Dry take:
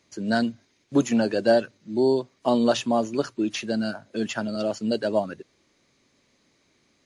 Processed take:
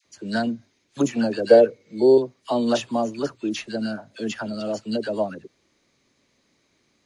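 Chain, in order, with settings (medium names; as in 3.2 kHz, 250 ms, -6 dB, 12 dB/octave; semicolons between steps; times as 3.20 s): phase dispersion lows, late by 53 ms, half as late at 1.1 kHz; 1.49–2.18 s: small resonant body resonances 470/2200 Hz, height 18 dB; trim -1 dB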